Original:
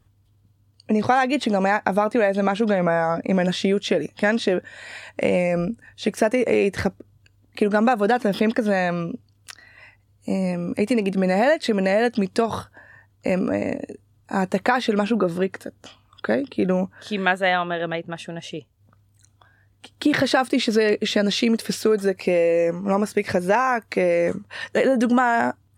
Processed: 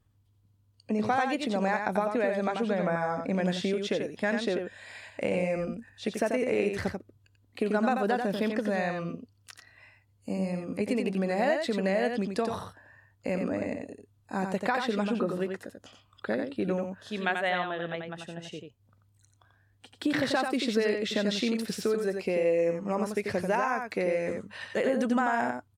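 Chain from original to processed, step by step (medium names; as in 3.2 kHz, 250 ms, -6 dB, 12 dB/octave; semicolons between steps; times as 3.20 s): delay 89 ms -5.5 dB; trim -9 dB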